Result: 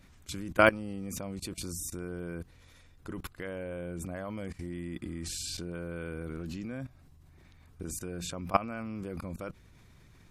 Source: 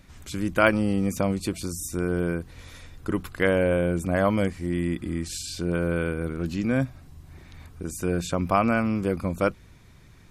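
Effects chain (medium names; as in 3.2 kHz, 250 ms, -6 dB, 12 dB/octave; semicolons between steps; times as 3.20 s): level held to a coarse grid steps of 19 dB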